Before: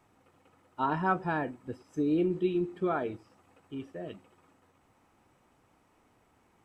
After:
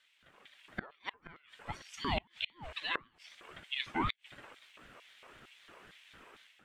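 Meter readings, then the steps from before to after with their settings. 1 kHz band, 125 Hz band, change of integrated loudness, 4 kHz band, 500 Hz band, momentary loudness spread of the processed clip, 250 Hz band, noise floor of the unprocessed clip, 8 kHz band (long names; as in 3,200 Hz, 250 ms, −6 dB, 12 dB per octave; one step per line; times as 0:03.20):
−7.0 dB, −8.0 dB, −7.0 dB, +13.5 dB, −14.5 dB, 20 LU, −14.0 dB, −68 dBFS, can't be measured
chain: parametric band 2,500 Hz +12 dB 1.7 octaves
automatic gain control gain up to 10.5 dB
auto-filter high-pass square 2.2 Hz 720–3,000 Hz
gate with flip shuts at −16 dBFS, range −34 dB
ring modulator whose carrier an LFO sweeps 490 Hz, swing 45%, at 3.9 Hz
level −3 dB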